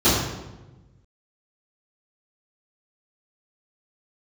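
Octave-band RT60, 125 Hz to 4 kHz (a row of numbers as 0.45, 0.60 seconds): 1.8, 1.4, 1.2, 1.0, 0.85, 0.75 seconds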